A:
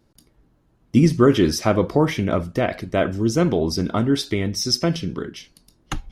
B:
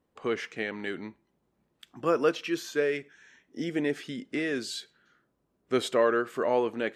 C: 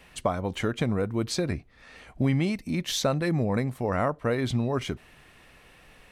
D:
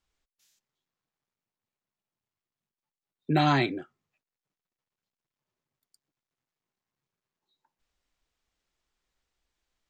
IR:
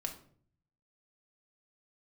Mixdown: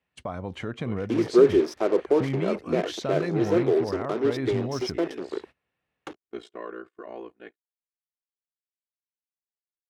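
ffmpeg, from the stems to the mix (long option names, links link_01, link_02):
-filter_complex "[0:a]acrusher=bits=3:mix=0:aa=0.5,highpass=frequency=390:width_type=q:width=4.1,adelay=150,volume=-10.5dB[link_01];[1:a]aecho=1:1:2.8:0.79,aeval=exprs='val(0)*sin(2*PI*29*n/s)':channel_layout=same,adelay=600,volume=-12dB[link_02];[2:a]highpass=frequency=62:width=0.5412,highpass=frequency=62:width=1.3066,alimiter=limit=-18dB:level=0:latency=1:release=52,volume=-3.5dB[link_03];[3:a]volume=-18dB[link_04];[link_01][link_02][link_03][link_04]amix=inputs=4:normalize=0,agate=range=-23dB:threshold=-43dB:ratio=16:detection=peak,aemphasis=mode=reproduction:type=50fm"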